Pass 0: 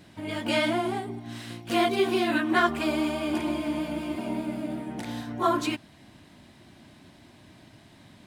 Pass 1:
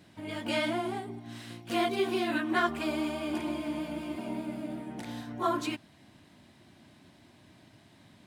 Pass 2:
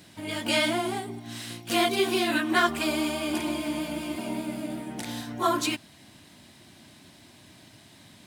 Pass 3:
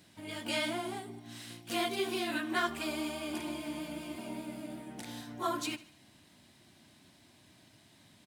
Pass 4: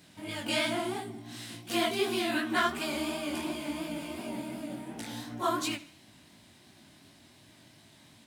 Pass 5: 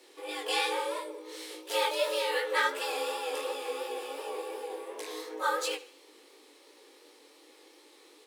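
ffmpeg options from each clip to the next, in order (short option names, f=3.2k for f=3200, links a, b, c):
-af "highpass=61,volume=-5dB"
-af "highshelf=f=3.3k:g=11,volume=3.5dB"
-af "aecho=1:1:75|150|225|300:0.126|0.0567|0.0255|0.0115,volume=-9dB"
-af "flanger=delay=17.5:depth=7.5:speed=2.8,volume=7dB"
-af "afreqshift=200"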